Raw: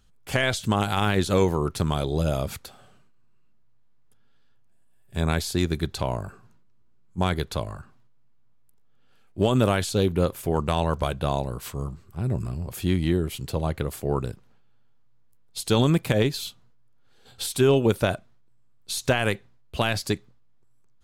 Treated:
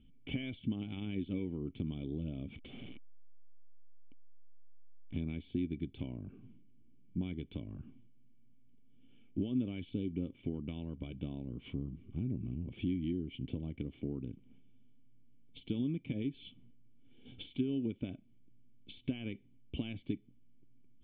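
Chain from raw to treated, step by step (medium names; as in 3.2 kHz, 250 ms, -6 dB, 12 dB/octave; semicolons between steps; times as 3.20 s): 2.53–5.17 s: one-bit delta coder 32 kbps, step -38.5 dBFS; compression 8:1, threshold -37 dBFS, peak gain reduction 21 dB; cascade formant filter i; trim +12 dB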